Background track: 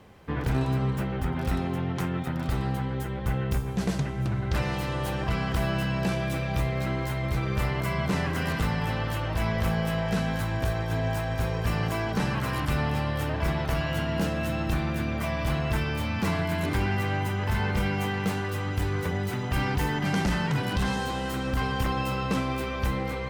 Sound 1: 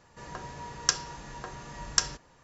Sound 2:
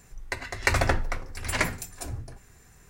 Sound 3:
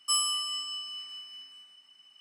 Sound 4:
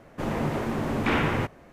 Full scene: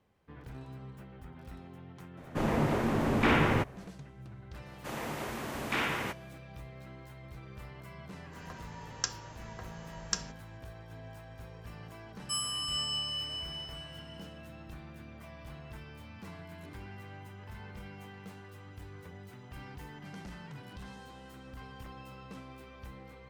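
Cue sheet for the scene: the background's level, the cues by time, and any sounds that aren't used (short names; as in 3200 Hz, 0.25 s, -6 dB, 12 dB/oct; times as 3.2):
background track -20 dB
2.17 add 4 -1 dB
4.66 add 4 -7 dB + tilt +3 dB/oct
8.15 add 1 -8 dB
12.21 add 3 -8.5 dB + AGC gain up to 12.5 dB
not used: 2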